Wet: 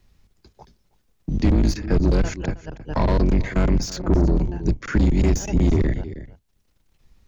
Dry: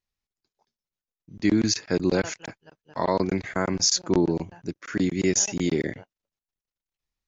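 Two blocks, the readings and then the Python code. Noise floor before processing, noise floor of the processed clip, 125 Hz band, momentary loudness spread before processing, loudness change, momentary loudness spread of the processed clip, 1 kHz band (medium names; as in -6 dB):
under -85 dBFS, -67 dBFS, +11.0 dB, 14 LU, +3.0 dB, 11 LU, +0.5 dB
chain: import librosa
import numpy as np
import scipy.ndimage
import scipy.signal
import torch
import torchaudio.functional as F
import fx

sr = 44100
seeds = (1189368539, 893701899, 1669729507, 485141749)

y = fx.octave_divider(x, sr, octaves=2, level_db=2.0)
y = fx.high_shelf(y, sr, hz=5900.0, db=-5.0)
y = y + 10.0 ** (-23.5 / 20.0) * np.pad(y, (int(318 * sr / 1000.0), 0))[:len(y)]
y = 10.0 ** (-21.5 / 20.0) * np.tanh(y / 10.0 ** (-21.5 / 20.0))
y = fx.low_shelf(y, sr, hz=440.0, db=10.5)
y = fx.band_squash(y, sr, depth_pct=70)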